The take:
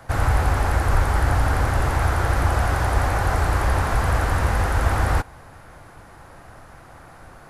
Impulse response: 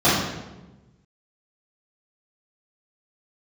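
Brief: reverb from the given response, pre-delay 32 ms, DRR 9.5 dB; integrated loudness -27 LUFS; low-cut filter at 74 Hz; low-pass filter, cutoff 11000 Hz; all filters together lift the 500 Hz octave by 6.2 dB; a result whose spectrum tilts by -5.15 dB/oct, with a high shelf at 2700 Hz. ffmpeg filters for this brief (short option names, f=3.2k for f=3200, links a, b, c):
-filter_complex "[0:a]highpass=74,lowpass=11k,equalizer=f=500:t=o:g=7.5,highshelf=f=2.7k:g=5.5,asplit=2[a][b];[1:a]atrim=start_sample=2205,adelay=32[c];[b][c]afir=irnorm=-1:irlink=0,volume=-32dB[d];[a][d]amix=inputs=2:normalize=0,volume=-6.5dB"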